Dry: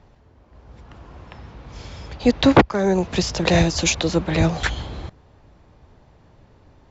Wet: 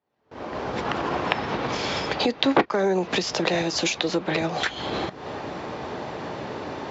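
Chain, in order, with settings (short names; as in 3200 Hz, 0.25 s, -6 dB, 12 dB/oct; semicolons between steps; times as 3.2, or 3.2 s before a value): recorder AGC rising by 73 dB/s; gate with hold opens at -21 dBFS; BPF 260–5500 Hz; on a send: reverb, pre-delay 3 ms, DRR 13.5 dB; on the sum: gain -5.5 dB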